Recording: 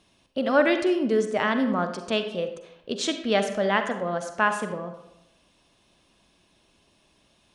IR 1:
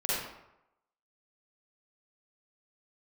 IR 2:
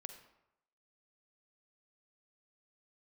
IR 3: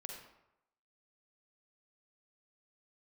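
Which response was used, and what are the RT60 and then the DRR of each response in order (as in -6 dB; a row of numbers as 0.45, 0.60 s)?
2; 0.85, 0.85, 0.85 s; -9.0, 7.0, 0.5 dB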